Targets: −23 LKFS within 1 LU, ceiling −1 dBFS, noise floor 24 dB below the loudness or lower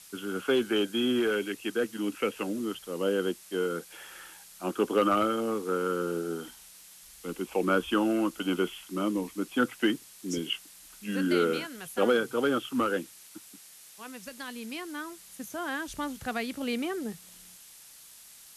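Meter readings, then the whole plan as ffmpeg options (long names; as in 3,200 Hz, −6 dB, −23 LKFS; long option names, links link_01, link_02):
background noise floor −52 dBFS; target noise floor −54 dBFS; integrated loudness −30.0 LKFS; sample peak −13.0 dBFS; target loudness −23.0 LKFS
→ -af "afftdn=noise_reduction=6:noise_floor=-52"
-af "volume=7dB"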